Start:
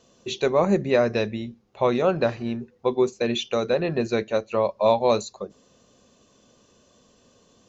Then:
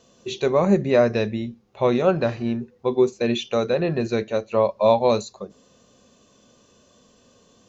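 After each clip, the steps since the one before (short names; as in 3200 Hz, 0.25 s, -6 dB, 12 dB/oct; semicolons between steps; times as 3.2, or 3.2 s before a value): harmonic-percussive split percussive -6 dB; gain +4 dB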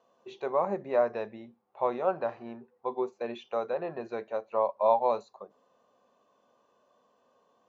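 band-pass 880 Hz, Q 2; gain -2 dB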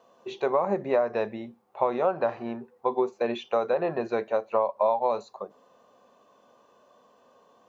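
compressor 10:1, threshold -28 dBFS, peak gain reduction 11 dB; gain +8.5 dB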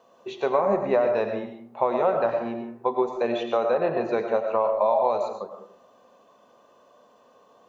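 reverb RT60 0.60 s, pre-delay 65 ms, DRR 4.5 dB; gain +1.5 dB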